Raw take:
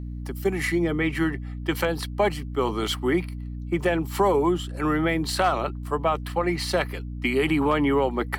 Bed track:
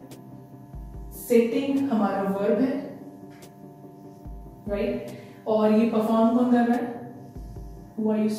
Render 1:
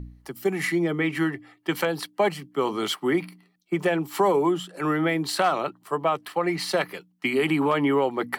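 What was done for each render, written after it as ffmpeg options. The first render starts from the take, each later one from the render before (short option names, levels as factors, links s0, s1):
-af "bandreject=f=60:t=h:w=4,bandreject=f=120:t=h:w=4,bandreject=f=180:t=h:w=4,bandreject=f=240:t=h:w=4,bandreject=f=300:t=h:w=4"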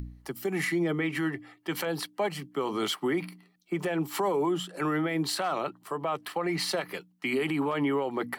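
-af "alimiter=limit=0.0944:level=0:latency=1:release=94,acompressor=mode=upward:threshold=0.00316:ratio=2.5"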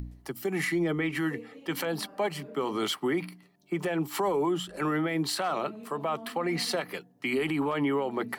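-filter_complex "[1:a]volume=0.0596[s0];[0:a][s0]amix=inputs=2:normalize=0"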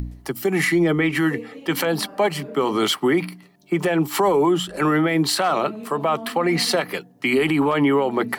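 -af "volume=2.99"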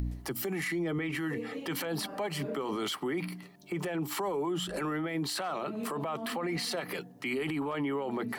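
-af "acompressor=threshold=0.0562:ratio=10,alimiter=level_in=1.26:limit=0.0631:level=0:latency=1:release=12,volume=0.794"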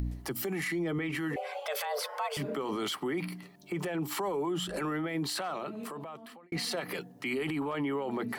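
-filter_complex "[0:a]asettb=1/sr,asplit=3[s0][s1][s2];[s0]atrim=end=1.364[s3];[s1]atrim=start=1.36:end=2.37,asetpts=PTS-STARTPTS,afade=t=in:d=0.004:c=qsin,afade=t=out:st=1.006:d=0.004:c=qsin,afreqshift=290[s4];[s2]atrim=start=2.366[s5];[s3][s4]acrossfade=d=0.004:c1=hsin:c2=qsin[s6];[s6][s5]acrossfade=d=0.004:c1=qsin:c2=hsin,asplit=2[s7][s8];[s7]atrim=end=6.52,asetpts=PTS-STARTPTS,afade=t=out:st=5.36:d=1.16[s9];[s8]atrim=start=6.52,asetpts=PTS-STARTPTS,afade=t=in:d=0.004:c=hsin[s10];[s9][s10]concat=n=2:v=0:a=1"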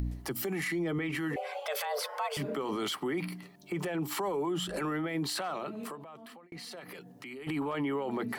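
-filter_complex "[0:a]asettb=1/sr,asplit=3[s0][s1][s2];[s0]atrim=end=5.954[s3];[s1]atrim=start=5.95:end=7.47,asetpts=PTS-STARTPTS,afade=t=in:d=0.004:c=qsin,afade=t=out:st=1.516:d=0.004:c=qsin,acompressor=threshold=0.00562:ratio=3:attack=3.2:release=140:knee=1:detection=peak[s4];[s2]atrim=start=7.466[s5];[s3][s4]acrossfade=d=0.004:c1=hsin:c2=qsin[s6];[s6][s5]acrossfade=d=0.004:c1=qsin:c2=hsin"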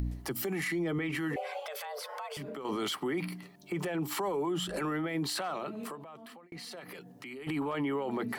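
-filter_complex "[0:a]asettb=1/sr,asplit=3[s0][s1][s2];[s0]atrim=end=1.624[s3];[s1]atrim=start=1.62:end=2.65,asetpts=PTS-STARTPTS,afade=t=in:d=0.004:c=qsin,afade=t=out:st=1.026:d=0.004:c=qsin,acompressor=threshold=0.0141:ratio=6:attack=3.2:release=140:knee=1:detection=peak[s4];[s2]atrim=start=2.646[s5];[s3][s4]acrossfade=d=0.004:c1=hsin:c2=qsin[s6];[s6][s5]acrossfade=d=0.004:c1=qsin:c2=hsin"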